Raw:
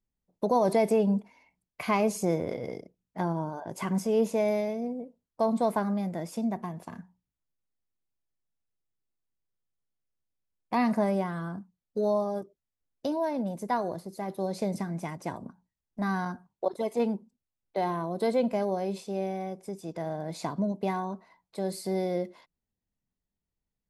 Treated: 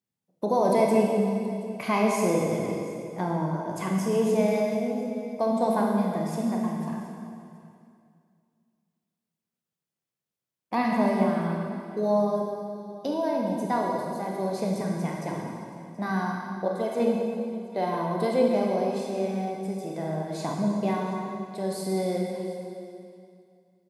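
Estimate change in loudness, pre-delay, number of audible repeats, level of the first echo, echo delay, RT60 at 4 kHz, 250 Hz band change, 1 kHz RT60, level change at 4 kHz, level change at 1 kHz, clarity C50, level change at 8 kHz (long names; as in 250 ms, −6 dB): +3.0 dB, 26 ms, 1, −19.5 dB, 725 ms, 2.3 s, +4.0 dB, 2.4 s, +3.5 dB, +3.5 dB, 0.5 dB, +3.5 dB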